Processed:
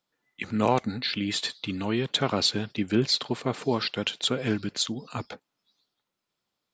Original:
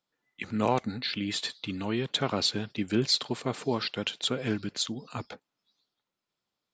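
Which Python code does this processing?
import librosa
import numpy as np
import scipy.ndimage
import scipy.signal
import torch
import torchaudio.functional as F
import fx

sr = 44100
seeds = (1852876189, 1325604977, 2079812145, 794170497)

y = fx.high_shelf(x, sr, hz=6900.0, db=-9.0, at=(2.79, 3.62))
y = y * 10.0 ** (3.0 / 20.0)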